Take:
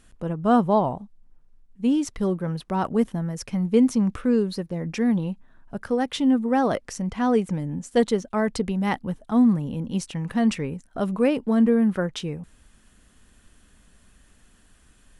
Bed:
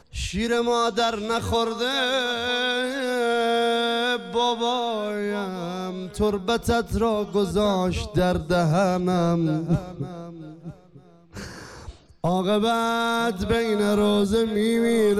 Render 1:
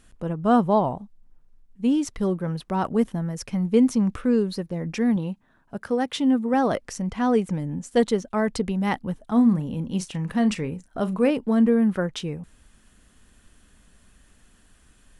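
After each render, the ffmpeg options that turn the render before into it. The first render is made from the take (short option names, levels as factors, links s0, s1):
-filter_complex "[0:a]asettb=1/sr,asplit=3[s0][s1][s2];[s0]atrim=end=5.164[s3];[s1]atrim=start=5.16:end=6.54,asetpts=PTS-STARTPTS,afade=t=in:d=0.004:c=qsin,afade=t=out:st=1.376:d=0.004:c=qsin,highpass=f=100:p=1[s4];[s2]atrim=start=6.536[s5];[s3][s4]acrossfade=d=0.004:c1=hsin:c2=qsin[s6];[s6][s5]acrossfade=d=0.004:c1=qsin:c2=hsin,asettb=1/sr,asplit=3[s7][s8][s9];[s7]atrim=end=9.274[s10];[s8]atrim=start=9.27:end=11.31,asetpts=PTS-STARTPTS,afade=t=in:d=0.004:c=qsin,afade=t=out:st=2.036:d=0.004:c=qsin,asplit=2[s11][s12];[s12]adelay=38,volume=0.2[s13];[s11][s13]amix=inputs=2:normalize=0,atrim=end_sample=89964[s14];[s9]atrim=start=11.306[s15];[s10][s14]acrossfade=d=0.004:c1=hsin:c2=qsin[s16];[s16][s15]acrossfade=d=0.004:c1=qsin:c2=hsin"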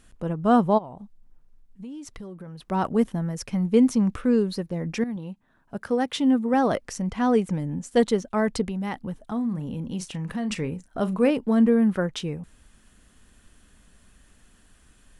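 -filter_complex "[0:a]asplit=3[s0][s1][s2];[s0]afade=t=out:st=0.77:d=0.02[s3];[s1]acompressor=threshold=0.0158:ratio=8:attack=3.2:release=140:knee=1:detection=peak,afade=t=in:st=0.77:d=0.02,afade=t=out:st=2.7:d=0.02[s4];[s2]afade=t=in:st=2.7:d=0.02[s5];[s3][s4][s5]amix=inputs=3:normalize=0,asplit=3[s6][s7][s8];[s6]afade=t=out:st=8.64:d=0.02[s9];[s7]acompressor=threshold=0.0398:ratio=2.5:attack=3.2:release=140:knee=1:detection=peak,afade=t=in:st=8.64:d=0.02,afade=t=out:st=10.5:d=0.02[s10];[s8]afade=t=in:st=10.5:d=0.02[s11];[s9][s10][s11]amix=inputs=3:normalize=0,asplit=2[s12][s13];[s12]atrim=end=5.04,asetpts=PTS-STARTPTS,afade=t=out:st=5.036:d=0.004:c=hsin:silence=0.223872[s14];[s13]atrim=start=5.04,asetpts=PTS-STARTPTS,afade=t=in:d=0.73:silence=0.223872[s15];[s14][s15]concat=n=2:v=0:a=1"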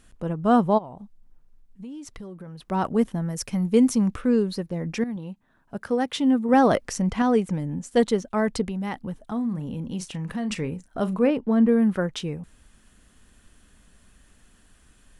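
-filter_complex "[0:a]asettb=1/sr,asplit=3[s0][s1][s2];[s0]atrim=end=3.294[s3];[s1]atrim=start=3.29:end=4.08,asetpts=PTS-STARTPTS,afade=t=in:d=0.004:c=qsin,afade=t=out:st=0.786:d=0.004:c=qsin,highshelf=f=6700:g=9.5[s4];[s2]atrim=start=4.076[s5];[s3][s4]acrossfade=d=0.004:c1=hsin:c2=qsin[s6];[s6][s5]acrossfade=d=0.004:c1=qsin:c2=hsin,asettb=1/sr,asplit=3[s7][s8][s9];[s7]atrim=end=11.194[s10];[s8]atrim=start=11.19:end=11.69,asetpts=PTS-STARTPTS,afade=t=in:d=0.004:c=qsin,afade=t=out:st=0.496:d=0.004:c=qsin,lowpass=f=2500:p=1[s11];[s9]atrim=start=11.686[s12];[s10][s11]acrossfade=d=0.004:c1=hsin:c2=qsin[s13];[s13][s12]acrossfade=d=0.004:c1=qsin:c2=hsin,asplit=3[s14][s15][s16];[s14]atrim=end=6.492[s17];[s15]atrim=start=6.488:end=7.222,asetpts=PTS-STARTPTS,volume=1.58[s18];[s16]atrim=start=7.218[s19];[s17][s18]acrossfade=d=0.004:c1=hsin:c2=hsin[s20];[s20][s19]acrossfade=d=0.004:c1=hsin:c2=hsin"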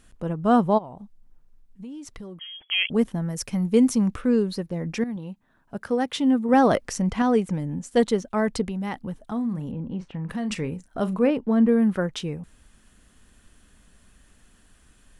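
-filter_complex "[0:a]asettb=1/sr,asplit=3[s0][s1][s2];[s0]atrim=end=2.394[s3];[s1]atrim=start=2.39:end=2.9,asetpts=PTS-STARTPTS,afade=t=in:d=0.004:c=qsin,afade=t=out:st=0.506:d=0.004:c=qsin,lowpass=f=2900:t=q:w=0.5098,lowpass=f=2900:t=q:w=0.6013,lowpass=f=2900:t=q:w=0.9,lowpass=f=2900:t=q:w=2.563,afreqshift=-3400[s4];[s2]atrim=start=2.896[s5];[s3][s4]acrossfade=d=0.004:c1=hsin:c2=qsin[s6];[s6][s5]acrossfade=d=0.004:c1=qsin:c2=hsin,asettb=1/sr,asplit=3[s7][s8][s9];[s7]atrim=end=9.714[s10];[s8]atrim=start=9.71:end=10.29,asetpts=PTS-STARTPTS,afade=t=in:d=0.004:c=qsin,afade=t=out:st=0.576:d=0.004:c=qsin,lowpass=1700[s11];[s9]atrim=start=10.286[s12];[s10][s11]acrossfade=d=0.004:c1=hsin:c2=qsin[s13];[s13][s12]acrossfade=d=0.004:c1=qsin:c2=hsin"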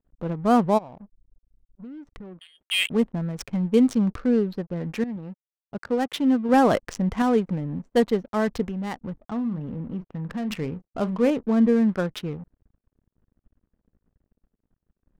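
-af "aeval=exprs='sgn(val(0))*max(abs(val(0))-0.00251,0)':c=same,adynamicsmooth=sensitivity=7.5:basefreq=580"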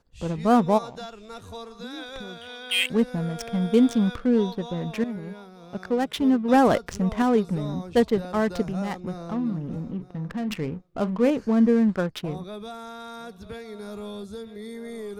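-filter_complex "[1:a]volume=0.158[s0];[0:a][s0]amix=inputs=2:normalize=0"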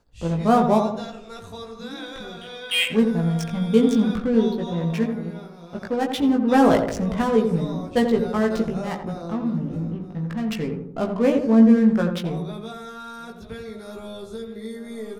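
-filter_complex "[0:a]asplit=2[s0][s1];[s1]adelay=18,volume=0.708[s2];[s0][s2]amix=inputs=2:normalize=0,asplit=2[s3][s4];[s4]adelay=85,lowpass=f=1100:p=1,volume=0.562,asplit=2[s5][s6];[s6]adelay=85,lowpass=f=1100:p=1,volume=0.52,asplit=2[s7][s8];[s8]adelay=85,lowpass=f=1100:p=1,volume=0.52,asplit=2[s9][s10];[s10]adelay=85,lowpass=f=1100:p=1,volume=0.52,asplit=2[s11][s12];[s12]adelay=85,lowpass=f=1100:p=1,volume=0.52,asplit=2[s13][s14];[s14]adelay=85,lowpass=f=1100:p=1,volume=0.52,asplit=2[s15][s16];[s16]adelay=85,lowpass=f=1100:p=1,volume=0.52[s17];[s3][s5][s7][s9][s11][s13][s15][s17]amix=inputs=8:normalize=0"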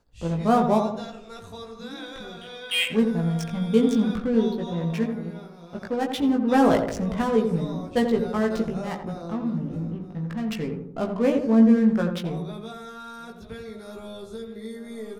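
-af "volume=0.75"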